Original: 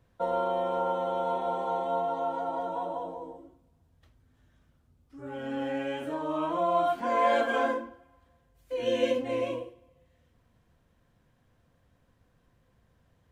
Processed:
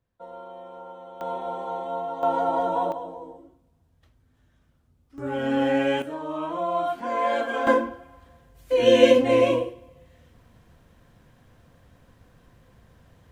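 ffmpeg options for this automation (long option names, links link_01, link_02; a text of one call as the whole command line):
ffmpeg -i in.wav -af "asetnsamples=nb_out_samples=441:pad=0,asendcmd='1.21 volume volume -1dB;2.23 volume volume 8.5dB;2.92 volume volume 1dB;5.18 volume volume 10dB;6.02 volume volume 0dB;7.67 volume volume 11.5dB',volume=-12.5dB" out.wav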